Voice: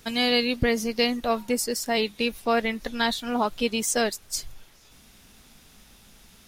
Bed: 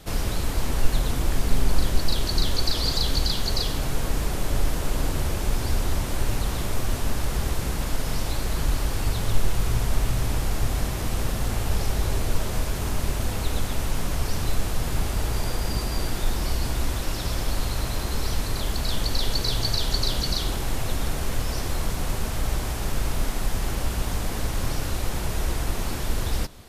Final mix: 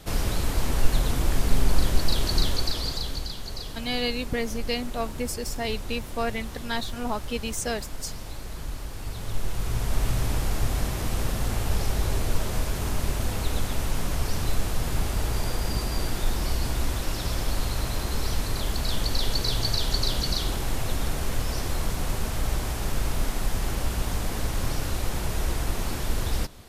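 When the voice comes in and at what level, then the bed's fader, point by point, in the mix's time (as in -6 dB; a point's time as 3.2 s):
3.70 s, -5.5 dB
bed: 2.4 s 0 dB
3.35 s -10.5 dB
8.96 s -10.5 dB
10.08 s -1 dB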